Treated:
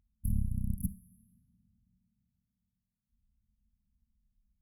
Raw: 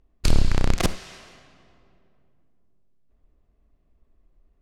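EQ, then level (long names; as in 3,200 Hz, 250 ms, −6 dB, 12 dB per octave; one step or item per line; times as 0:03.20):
high-pass filter 100 Hz 6 dB per octave
linear-phase brick-wall band-stop 240–10,000 Hz
parametric band 150 Hz −11.5 dB 0.22 octaves
−3.5 dB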